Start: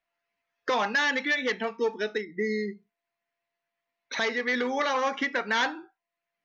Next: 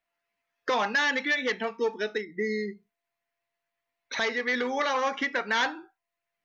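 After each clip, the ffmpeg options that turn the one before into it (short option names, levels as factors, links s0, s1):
-af "asubboost=boost=3:cutoff=91"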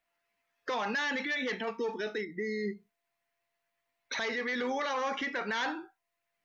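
-af "alimiter=level_in=1.58:limit=0.0631:level=0:latency=1:release=10,volume=0.631,volume=1.26"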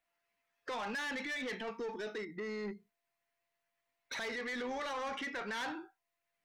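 -af "asoftclip=type=tanh:threshold=0.0266,volume=0.708"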